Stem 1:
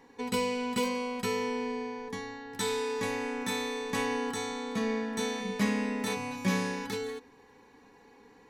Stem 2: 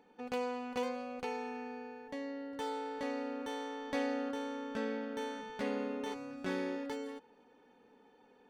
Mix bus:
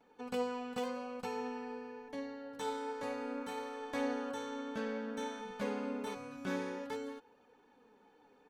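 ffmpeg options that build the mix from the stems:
-filter_complex "[0:a]volume=-17.5dB[a];[1:a]equalizer=f=1.3k:t=o:w=1.5:g=3.5,flanger=delay=1.4:depth=6.1:regen=57:speed=0.54:shape=triangular,adelay=6.2,volume=1dB[b];[a][b]amix=inputs=2:normalize=0,bandreject=f=1.9k:w=9.5"

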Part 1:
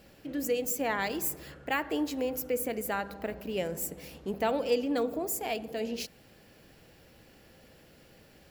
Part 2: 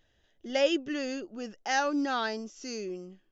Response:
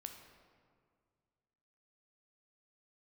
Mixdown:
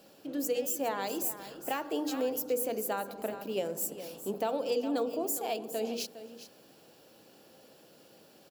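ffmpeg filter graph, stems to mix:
-filter_complex "[0:a]highpass=240,equalizer=f=2k:w=2.1:g=-11.5,bandreject=f=60:t=h:w=6,bandreject=f=120:t=h:w=6,bandreject=f=180:t=h:w=6,bandreject=f=240:t=h:w=6,bandreject=f=300:t=h:w=6,bandreject=f=360:t=h:w=6,bandreject=f=420:t=h:w=6,bandreject=f=480:t=h:w=6,volume=2dB,asplit=2[a][b];[b]volume=-13.5dB[c];[1:a]volume=-19.5dB[d];[c]aecho=0:1:409:1[e];[a][d][e]amix=inputs=3:normalize=0,alimiter=limit=-21.5dB:level=0:latency=1:release=307"

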